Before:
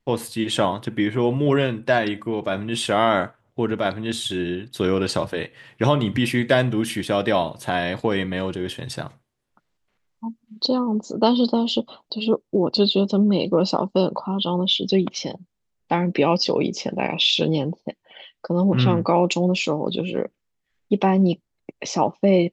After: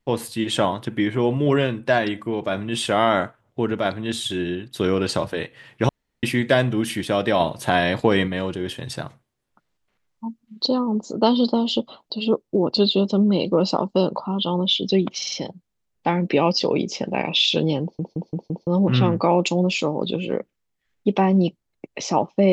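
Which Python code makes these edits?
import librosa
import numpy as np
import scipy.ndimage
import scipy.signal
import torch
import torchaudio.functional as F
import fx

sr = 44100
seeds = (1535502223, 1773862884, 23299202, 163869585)

y = fx.edit(x, sr, fx.room_tone_fill(start_s=5.89, length_s=0.34),
    fx.clip_gain(start_s=7.4, length_s=0.88, db=4.0),
    fx.stutter(start_s=15.17, slice_s=0.05, count=4),
    fx.stutter_over(start_s=17.67, slice_s=0.17, count=5), tone=tone)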